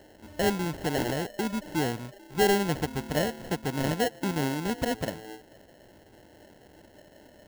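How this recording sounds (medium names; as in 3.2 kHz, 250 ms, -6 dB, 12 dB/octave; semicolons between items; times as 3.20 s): aliases and images of a low sample rate 1.2 kHz, jitter 0%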